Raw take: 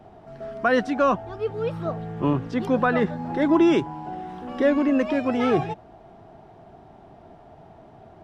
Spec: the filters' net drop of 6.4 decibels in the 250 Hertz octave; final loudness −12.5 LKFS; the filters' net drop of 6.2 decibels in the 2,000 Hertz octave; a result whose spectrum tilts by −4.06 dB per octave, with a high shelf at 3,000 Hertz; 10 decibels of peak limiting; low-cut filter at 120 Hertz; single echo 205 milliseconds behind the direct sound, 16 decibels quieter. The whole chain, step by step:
high-pass filter 120 Hz
parametric band 250 Hz −8 dB
parametric band 2,000 Hz −6 dB
high-shelf EQ 3,000 Hz −7.5 dB
brickwall limiter −21 dBFS
single-tap delay 205 ms −16 dB
level +19 dB

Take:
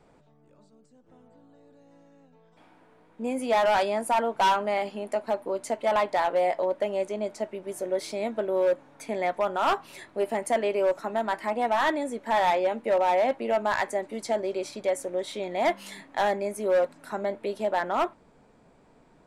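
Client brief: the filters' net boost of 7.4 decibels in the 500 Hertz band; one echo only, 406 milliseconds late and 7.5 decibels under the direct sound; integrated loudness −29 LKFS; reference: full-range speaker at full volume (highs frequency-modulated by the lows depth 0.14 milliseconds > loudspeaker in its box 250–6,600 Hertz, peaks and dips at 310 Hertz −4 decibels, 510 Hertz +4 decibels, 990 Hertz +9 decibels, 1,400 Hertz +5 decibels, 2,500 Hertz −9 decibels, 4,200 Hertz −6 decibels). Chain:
parametric band 500 Hz +6.5 dB
single-tap delay 406 ms −7.5 dB
highs frequency-modulated by the lows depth 0.14 ms
loudspeaker in its box 250–6,600 Hz, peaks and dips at 310 Hz −4 dB, 510 Hz +4 dB, 990 Hz +9 dB, 1,400 Hz +5 dB, 2,500 Hz −9 dB, 4,200 Hz −6 dB
level −9 dB

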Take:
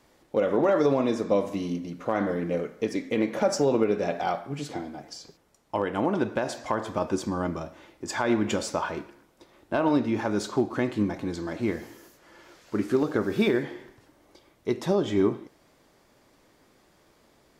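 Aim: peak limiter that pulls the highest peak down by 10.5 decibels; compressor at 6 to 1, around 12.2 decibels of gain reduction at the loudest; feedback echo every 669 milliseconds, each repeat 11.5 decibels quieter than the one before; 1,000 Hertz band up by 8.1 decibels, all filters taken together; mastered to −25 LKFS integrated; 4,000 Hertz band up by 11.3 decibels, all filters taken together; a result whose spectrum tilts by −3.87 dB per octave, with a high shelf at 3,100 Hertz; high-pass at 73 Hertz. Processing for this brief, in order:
high-pass filter 73 Hz
parametric band 1,000 Hz +9 dB
high-shelf EQ 3,100 Hz +7.5 dB
parametric band 4,000 Hz +8 dB
downward compressor 6 to 1, threshold −28 dBFS
brickwall limiter −23 dBFS
repeating echo 669 ms, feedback 27%, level −11.5 dB
level +10 dB

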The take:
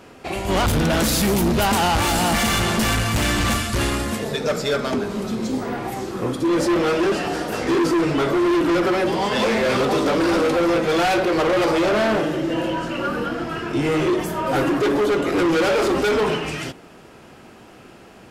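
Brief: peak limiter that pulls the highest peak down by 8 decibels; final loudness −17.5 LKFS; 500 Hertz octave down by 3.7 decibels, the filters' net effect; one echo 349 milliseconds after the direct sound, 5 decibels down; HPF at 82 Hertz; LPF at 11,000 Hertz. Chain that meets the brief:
high-pass filter 82 Hz
low-pass filter 11,000 Hz
parametric band 500 Hz −5 dB
brickwall limiter −17.5 dBFS
single-tap delay 349 ms −5 dB
level +6 dB

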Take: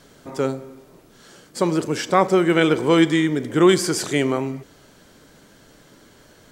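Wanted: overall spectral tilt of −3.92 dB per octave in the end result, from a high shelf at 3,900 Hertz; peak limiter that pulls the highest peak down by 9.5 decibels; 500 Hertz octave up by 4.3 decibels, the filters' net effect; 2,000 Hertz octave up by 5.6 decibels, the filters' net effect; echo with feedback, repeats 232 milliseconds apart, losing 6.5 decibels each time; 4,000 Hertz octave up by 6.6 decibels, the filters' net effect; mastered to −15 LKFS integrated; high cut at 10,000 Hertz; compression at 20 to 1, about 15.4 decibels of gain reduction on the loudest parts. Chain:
low-pass filter 10,000 Hz
parametric band 500 Hz +5.5 dB
parametric band 2,000 Hz +4.5 dB
high-shelf EQ 3,900 Hz +4.5 dB
parametric band 4,000 Hz +4.5 dB
downward compressor 20 to 1, threshold −22 dBFS
brickwall limiter −19.5 dBFS
repeating echo 232 ms, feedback 47%, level −6.5 dB
level +14.5 dB

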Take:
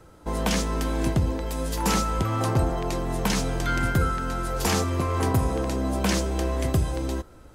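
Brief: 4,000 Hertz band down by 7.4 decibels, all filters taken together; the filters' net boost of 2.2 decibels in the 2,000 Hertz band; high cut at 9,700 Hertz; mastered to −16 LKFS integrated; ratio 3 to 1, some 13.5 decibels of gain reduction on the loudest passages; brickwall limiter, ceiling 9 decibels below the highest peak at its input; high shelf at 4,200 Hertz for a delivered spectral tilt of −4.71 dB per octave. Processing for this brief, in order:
low-pass filter 9,700 Hz
parametric band 2,000 Hz +6 dB
parametric band 4,000 Hz −8.5 dB
high-shelf EQ 4,200 Hz −6 dB
downward compressor 3 to 1, threshold −37 dBFS
level +25.5 dB
brickwall limiter −7 dBFS

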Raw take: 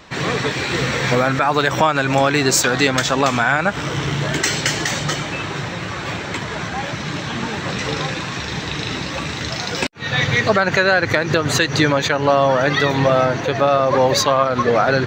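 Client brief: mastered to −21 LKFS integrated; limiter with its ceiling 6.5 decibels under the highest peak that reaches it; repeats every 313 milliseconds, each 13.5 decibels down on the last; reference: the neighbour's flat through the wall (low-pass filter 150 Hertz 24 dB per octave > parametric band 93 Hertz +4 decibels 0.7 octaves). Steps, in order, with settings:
brickwall limiter −8 dBFS
low-pass filter 150 Hz 24 dB per octave
parametric band 93 Hz +4 dB 0.7 octaves
repeating echo 313 ms, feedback 21%, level −13.5 dB
level +9 dB

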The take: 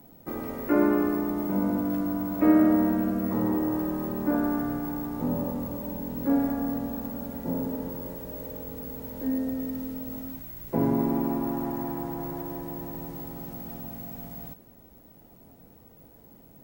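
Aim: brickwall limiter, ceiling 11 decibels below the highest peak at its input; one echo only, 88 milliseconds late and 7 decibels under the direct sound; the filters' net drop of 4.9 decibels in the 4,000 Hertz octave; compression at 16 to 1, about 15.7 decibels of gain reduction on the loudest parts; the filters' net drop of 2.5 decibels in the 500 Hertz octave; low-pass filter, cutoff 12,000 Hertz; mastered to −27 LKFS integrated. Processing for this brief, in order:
low-pass filter 12,000 Hz
parametric band 500 Hz −3.5 dB
parametric band 4,000 Hz −6.5 dB
downward compressor 16 to 1, threshold −32 dBFS
brickwall limiter −33 dBFS
single-tap delay 88 ms −7 dB
level +13.5 dB

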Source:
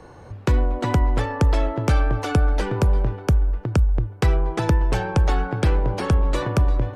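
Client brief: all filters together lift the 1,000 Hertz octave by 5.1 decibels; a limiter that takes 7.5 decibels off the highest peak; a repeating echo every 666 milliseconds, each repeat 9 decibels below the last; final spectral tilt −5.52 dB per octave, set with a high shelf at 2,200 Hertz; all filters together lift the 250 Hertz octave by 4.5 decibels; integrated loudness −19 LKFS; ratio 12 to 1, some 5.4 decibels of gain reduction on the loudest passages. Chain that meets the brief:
parametric band 250 Hz +6 dB
parametric band 1,000 Hz +7.5 dB
high-shelf EQ 2,200 Hz −8 dB
downward compressor 12 to 1, threshold −18 dBFS
brickwall limiter −15.5 dBFS
repeating echo 666 ms, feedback 35%, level −9 dB
level +6.5 dB

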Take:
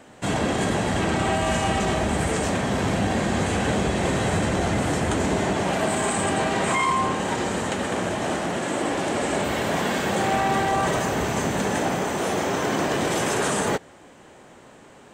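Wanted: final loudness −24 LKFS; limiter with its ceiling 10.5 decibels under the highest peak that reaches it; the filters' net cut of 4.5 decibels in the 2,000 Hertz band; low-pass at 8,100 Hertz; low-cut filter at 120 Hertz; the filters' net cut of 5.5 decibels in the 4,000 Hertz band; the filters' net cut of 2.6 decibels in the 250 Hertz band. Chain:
high-pass filter 120 Hz
low-pass filter 8,100 Hz
parametric band 250 Hz −3 dB
parametric band 2,000 Hz −4.5 dB
parametric band 4,000 Hz −5.5 dB
level +7.5 dB
brickwall limiter −15.5 dBFS

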